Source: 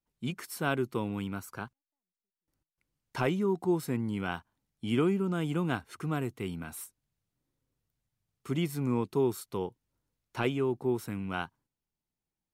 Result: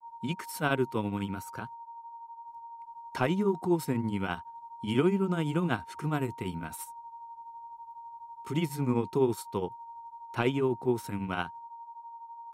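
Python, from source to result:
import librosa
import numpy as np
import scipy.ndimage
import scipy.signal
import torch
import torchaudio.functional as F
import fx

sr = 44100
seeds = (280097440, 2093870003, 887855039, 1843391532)

y = x + 10.0 ** (-44.0 / 20.0) * np.sin(2.0 * np.pi * 930.0 * np.arange(len(x)) / sr)
y = fx.granulator(y, sr, seeds[0], grain_ms=137.0, per_s=12.0, spray_ms=11.0, spread_st=0)
y = y * 10.0 ** (3.5 / 20.0)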